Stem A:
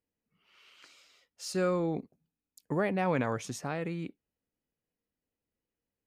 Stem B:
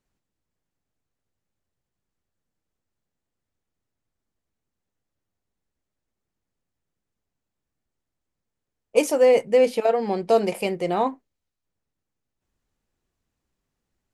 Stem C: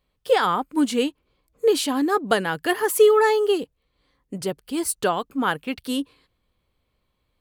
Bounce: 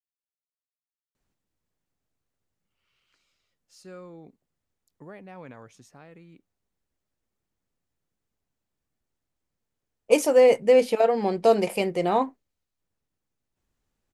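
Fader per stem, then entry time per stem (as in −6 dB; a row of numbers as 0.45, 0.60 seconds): −14.5 dB, 0.0 dB, muted; 2.30 s, 1.15 s, muted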